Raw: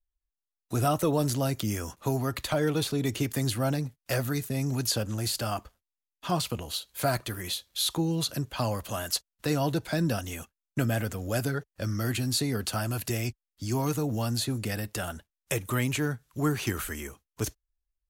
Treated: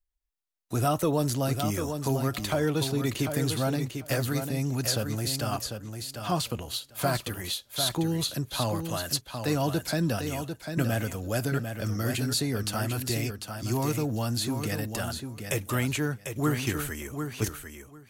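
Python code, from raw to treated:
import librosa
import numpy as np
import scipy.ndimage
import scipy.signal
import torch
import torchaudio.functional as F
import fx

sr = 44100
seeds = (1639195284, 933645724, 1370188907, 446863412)

y = fx.echo_feedback(x, sr, ms=747, feedback_pct=15, wet_db=-7)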